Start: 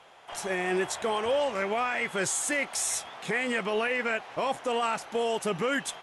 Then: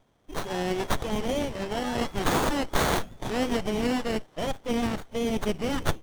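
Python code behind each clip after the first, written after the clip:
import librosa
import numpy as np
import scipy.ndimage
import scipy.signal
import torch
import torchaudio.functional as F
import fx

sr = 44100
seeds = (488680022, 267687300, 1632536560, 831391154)

y = fx.noise_reduce_blind(x, sr, reduce_db=16)
y = fx.high_shelf_res(y, sr, hz=2100.0, db=13.5, q=3.0)
y = fx.running_max(y, sr, window=17)
y = F.gain(torch.from_numpy(y), -3.5).numpy()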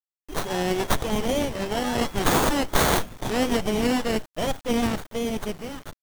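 y = fx.fade_out_tail(x, sr, length_s=1.13)
y = fx.high_shelf(y, sr, hz=7900.0, db=6.5)
y = fx.quant_dither(y, sr, seeds[0], bits=8, dither='none')
y = F.gain(torch.from_numpy(y), 3.5).numpy()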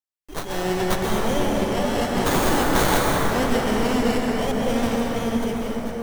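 y = fx.rev_plate(x, sr, seeds[1], rt60_s=4.7, hf_ratio=0.35, predelay_ms=115, drr_db=-3.0)
y = F.gain(torch.from_numpy(y), -2.0).numpy()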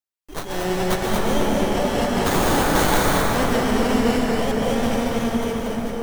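y = x + 10.0 ** (-4.0 / 20.0) * np.pad(x, (int(232 * sr / 1000.0), 0))[:len(x)]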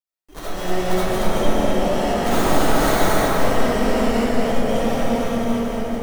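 y = fx.rev_freeverb(x, sr, rt60_s=0.87, hf_ratio=0.35, predelay_ms=30, drr_db=-7.0)
y = F.gain(torch.from_numpy(y), -7.5).numpy()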